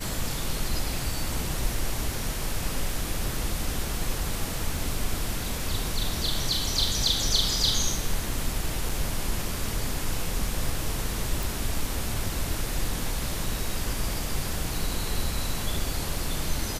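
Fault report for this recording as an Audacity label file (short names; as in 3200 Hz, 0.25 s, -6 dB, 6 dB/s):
8.890000	8.890000	gap 4.8 ms
11.430000	11.430000	pop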